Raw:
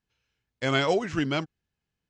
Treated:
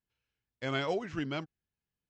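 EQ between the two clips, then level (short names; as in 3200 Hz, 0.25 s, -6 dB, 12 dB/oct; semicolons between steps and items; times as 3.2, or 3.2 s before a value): air absorption 66 m; -8.0 dB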